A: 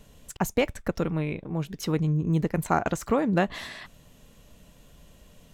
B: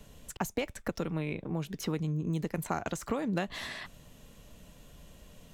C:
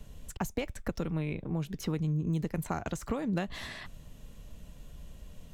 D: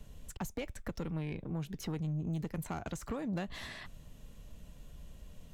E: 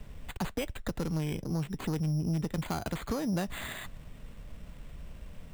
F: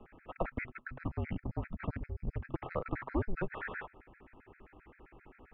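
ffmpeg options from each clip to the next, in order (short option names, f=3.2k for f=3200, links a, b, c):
-filter_complex "[0:a]acrossover=split=140|2900[a][b][c];[a]acompressor=threshold=-46dB:ratio=4[d];[b]acompressor=threshold=-31dB:ratio=4[e];[c]acompressor=threshold=-41dB:ratio=4[f];[d][e][f]amix=inputs=3:normalize=0"
-af "lowshelf=f=130:g=11.5,volume=-2.5dB"
-af "asoftclip=type=tanh:threshold=-26.5dB,volume=-3dB"
-af "acrusher=samples=8:mix=1:aa=0.000001,volume=5.5dB"
-af "bandreject=f=114.6:t=h:w=4,bandreject=f=229.2:t=h:w=4,bandreject=f=343.8:t=h:w=4,bandreject=f=458.4:t=h:w=4,highpass=f=230:t=q:w=0.5412,highpass=f=230:t=q:w=1.307,lowpass=f=2.4k:t=q:w=0.5176,lowpass=f=2.4k:t=q:w=0.7071,lowpass=f=2.4k:t=q:w=1.932,afreqshift=-210,afftfilt=real='re*gt(sin(2*PI*7.6*pts/sr)*(1-2*mod(floor(b*sr/1024/1300),2)),0)':imag='im*gt(sin(2*PI*7.6*pts/sr)*(1-2*mod(floor(b*sr/1024/1300),2)),0)':win_size=1024:overlap=0.75,volume=4.5dB"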